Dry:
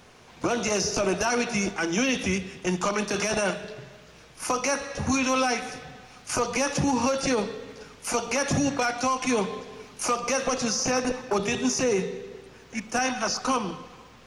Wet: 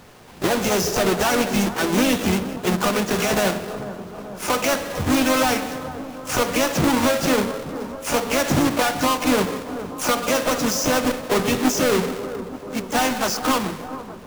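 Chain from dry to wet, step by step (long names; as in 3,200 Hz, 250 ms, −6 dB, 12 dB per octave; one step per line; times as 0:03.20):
each half-wave held at its own peak
pitch-shifted copies added +3 semitones −7 dB
bucket-brigade delay 438 ms, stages 4,096, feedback 71%, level −13.5 dB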